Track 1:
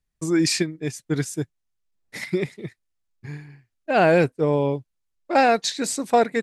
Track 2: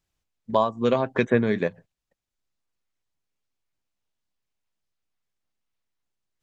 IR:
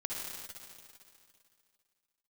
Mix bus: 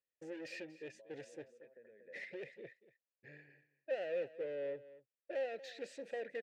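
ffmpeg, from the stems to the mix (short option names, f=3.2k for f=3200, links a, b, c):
-filter_complex "[0:a]lowpass=8.7k,acompressor=threshold=-19dB:ratio=6,asoftclip=type=tanh:threshold=-30.5dB,volume=1dB,asplit=3[a][b][c];[b]volume=-17dB[d];[1:a]lowpass=2.1k,alimiter=limit=-15.5dB:level=0:latency=1,acompressor=threshold=-29dB:ratio=10,adelay=450,volume=-16.5dB,asplit=2[e][f];[f]volume=-6.5dB[g];[c]apad=whole_len=303034[h];[e][h]sidechaincompress=threshold=-36dB:ratio=8:attack=16:release=1080[i];[d][g]amix=inputs=2:normalize=0,aecho=0:1:235:1[j];[a][i][j]amix=inputs=3:normalize=0,asplit=3[k][l][m];[k]bandpass=f=530:t=q:w=8,volume=0dB[n];[l]bandpass=f=1.84k:t=q:w=8,volume=-6dB[o];[m]bandpass=f=2.48k:t=q:w=8,volume=-9dB[p];[n][o][p]amix=inputs=3:normalize=0"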